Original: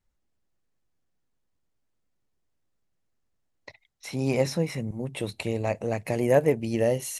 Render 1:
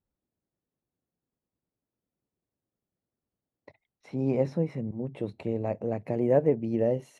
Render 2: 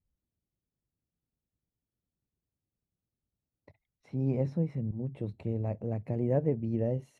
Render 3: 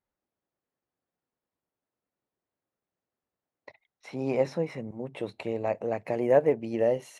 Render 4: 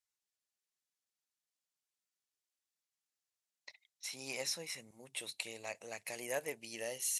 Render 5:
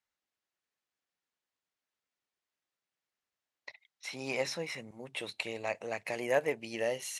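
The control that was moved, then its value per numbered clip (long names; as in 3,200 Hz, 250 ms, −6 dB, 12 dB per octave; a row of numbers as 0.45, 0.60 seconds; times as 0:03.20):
resonant band-pass, frequency: 270, 100, 670, 7,800, 2,600 Hertz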